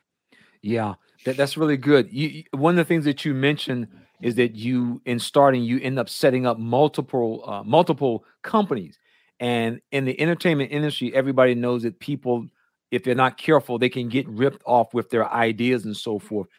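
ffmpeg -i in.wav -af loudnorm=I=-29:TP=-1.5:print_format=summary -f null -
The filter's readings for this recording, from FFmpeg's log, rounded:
Input Integrated:    -22.4 LUFS
Input True Peak:      -3.2 dBTP
Input LRA:             1.7 LU
Input Threshold:     -32.7 LUFS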